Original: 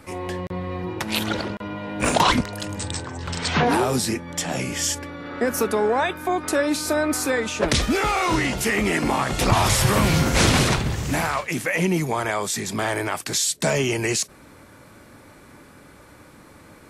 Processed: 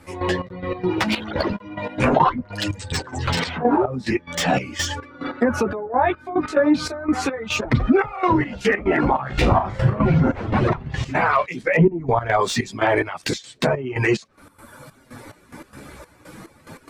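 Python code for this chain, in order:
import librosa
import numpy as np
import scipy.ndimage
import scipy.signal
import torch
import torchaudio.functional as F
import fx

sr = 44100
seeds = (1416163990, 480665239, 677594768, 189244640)

p1 = fx.lowpass(x, sr, hz=2000.0, slope=6, at=(5.62, 6.36))
p2 = fx.env_lowpass_down(p1, sr, base_hz=1200.0, full_db=-17.0)
p3 = fx.dereverb_blind(p2, sr, rt60_s=1.6)
p4 = fx.tilt_eq(p3, sr, slope=-3.0, at=(11.61, 12.4))
p5 = fx.over_compress(p4, sr, threshold_db=-28.0, ratio=-1.0)
p6 = p4 + (p5 * librosa.db_to_amplitude(0.0))
p7 = fx.chorus_voices(p6, sr, voices=2, hz=0.38, base_ms=12, depth_ms=4.4, mix_pct=45)
p8 = fx.step_gate(p7, sr, bpm=144, pattern='..xx..x.xxx', floor_db=-12.0, edge_ms=4.5)
p9 = fx.room_flutter(p8, sr, wall_m=6.2, rt60_s=0.26, at=(9.21, 9.95))
p10 = fx.slew_limit(p9, sr, full_power_hz=230.0)
y = p10 * librosa.db_to_amplitude(5.5)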